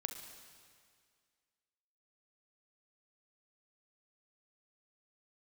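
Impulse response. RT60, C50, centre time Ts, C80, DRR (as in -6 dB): 2.0 s, 6.5 dB, 37 ms, 8.5 dB, 5.5 dB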